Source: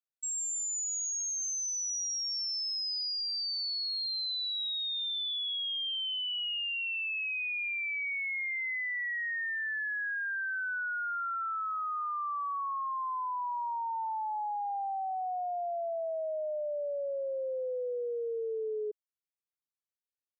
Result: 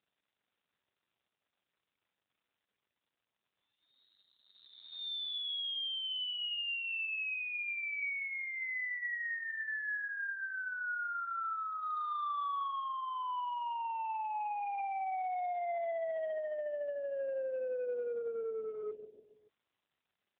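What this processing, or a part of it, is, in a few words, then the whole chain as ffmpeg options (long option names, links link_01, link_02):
telephone: -filter_complex "[0:a]asplit=3[link_01][link_02][link_03];[link_01]afade=type=out:start_time=16.4:duration=0.02[link_04];[link_02]lowshelf=frequency=330:gain=-5.5,afade=type=in:start_time=16.4:duration=0.02,afade=type=out:start_time=17.15:duration=0.02[link_05];[link_03]afade=type=in:start_time=17.15:duration=0.02[link_06];[link_04][link_05][link_06]amix=inputs=3:normalize=0,highpass=280,lowpass=3400,lowpass=5900,aecho=1:1:143|286|429|572:0.2|0.0938|0.0441|0.0207,asoftclip=type=tanh:threshold=-34dB,volume=4dB" -ar 8000 -c:a libopencore_amrnb -b:a 7400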